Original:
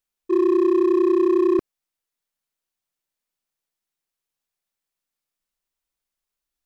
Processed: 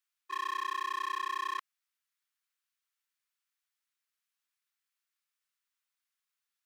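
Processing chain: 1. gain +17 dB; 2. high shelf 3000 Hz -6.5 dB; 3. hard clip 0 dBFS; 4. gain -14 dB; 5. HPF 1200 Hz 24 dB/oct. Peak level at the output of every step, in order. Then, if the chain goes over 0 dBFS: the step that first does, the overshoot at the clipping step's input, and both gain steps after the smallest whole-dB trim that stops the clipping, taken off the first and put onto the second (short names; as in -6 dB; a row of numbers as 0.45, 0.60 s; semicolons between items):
+3.5, +3.5, 0.0, -14.0, -25.5 dBFS; step 1, 3.5 dB; step 1 +13 dB, step 4 -10 dB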